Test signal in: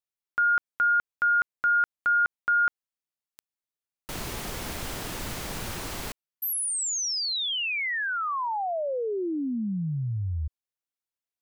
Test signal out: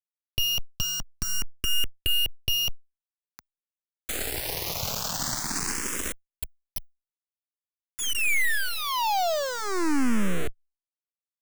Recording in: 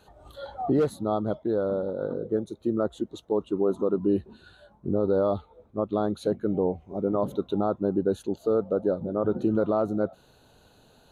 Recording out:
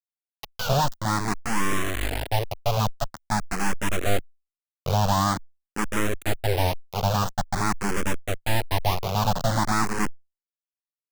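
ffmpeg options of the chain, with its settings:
ffmpeg -i in.wav -filter_complex "[0:a]superequalizer=11b=1.41:13b=0.447:14b=2.51:15b=3.16,acrossover=split=210|1200[link_01][link_02][link_03];[link_01]aecho=1:1:610|1220|1830:0.141|0.0523|0.0193[link_04];[link_03]acompressor=threshold=-39dB:ratio=5:attack=59:release=99:knee=1:detection=peak[link_05];[link_04][link_02][link_05]amix=inputs=3:normalize=0,aeval=exprs='abs(val(0))':channel_layout=same,acrusher=bits=4:mix=0:aa=0.000001,asplit=2[link_06][link_07];[link_07]afreqshift=0.47[link_08];[link_06][link_08]amix=inputs=2:normalize=1,volume=6dB" out.wav

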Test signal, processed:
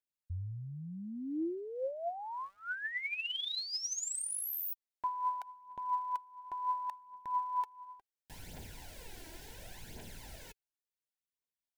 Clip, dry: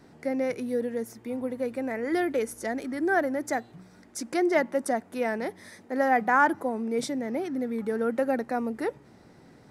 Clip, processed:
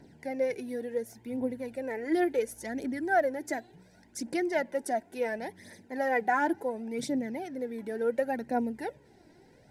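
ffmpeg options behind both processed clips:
ffmpeg -i in.wav -af "aphaser=in_gain=1:out_gain=1:delay=3.2:decay=0.54:speed=0.7:type=triangular,asuperstop=centerf=1200:order=4:qfactor=3,volume=-5dB" out.wav

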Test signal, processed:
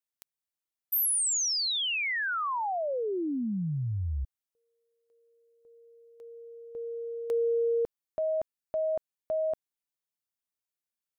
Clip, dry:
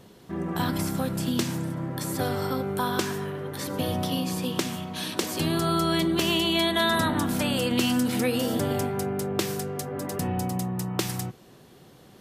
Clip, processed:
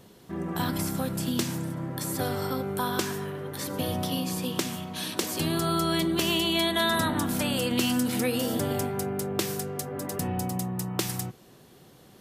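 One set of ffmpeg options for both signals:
ffmpeg -i in.wav -af "highshelf=frequency=7000:gain=5,volume=-2dB" out.wav

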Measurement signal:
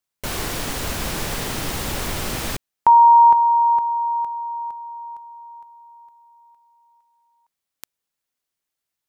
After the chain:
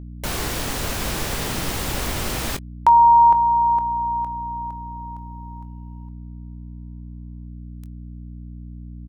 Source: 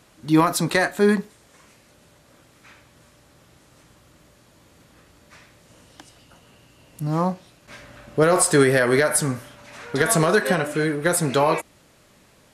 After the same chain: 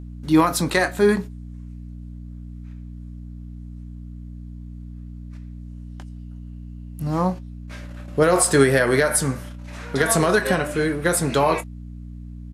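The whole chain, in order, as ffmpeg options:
ffmpeg -i in.wav -filter_complex "[0:a]agate=range=-16dB:threshold=-47dB:ratio=16:release=59:detection=peak,aeval=exprs='val(0)+0.02*(sin(2*PI*60*n/s)+sin(2*PI*2*60*n/s)/2+sin(2*PI*3*60*n/s)/3+sin(2*PI*4*60*n/s)/4+sin(2*PI*5*60*n/s)/5)':channel_layout=same,asplit=2[link_01][link_02];[link_02]adelay=22,volume=-13dB[link_03];[link_01][link_03]amix=inputs=2:normalize=0" out.wav

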